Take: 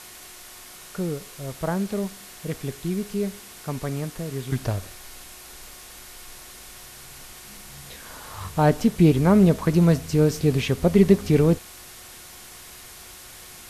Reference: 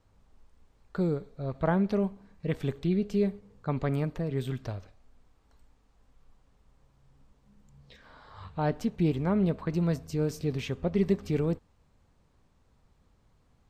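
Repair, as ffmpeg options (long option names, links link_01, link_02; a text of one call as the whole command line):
ffmpeg -i in.wav -af "bandreject=frequency=362.9:width_type=h:width=4,bandreject=frequency=725.8:width_type=h:width=4,bandreject=frequency=1088.7:width_type=h:width=4,bandreject=frequency=1451.6:width_type=h:width=4,bandreject=frequency=1814.5:width_type=h:width=4,bandreject=frequency=2177.4:width_type=h:width=4,afwtdn=0.0079,asetnsamples=nb_out_samples=441:pad=0,asendcmd='4.52 volume volume -10dB',volume=0dB" out.wav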